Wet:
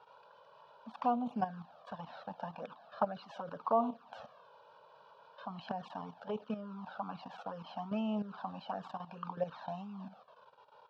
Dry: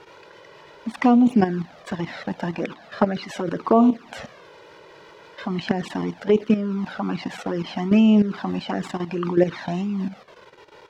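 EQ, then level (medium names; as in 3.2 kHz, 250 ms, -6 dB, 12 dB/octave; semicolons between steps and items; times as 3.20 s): high-pass 640 Hz 6 dB/octave; distance through air 320 m; static phaser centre 840 Hz, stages 4; -5.0 dB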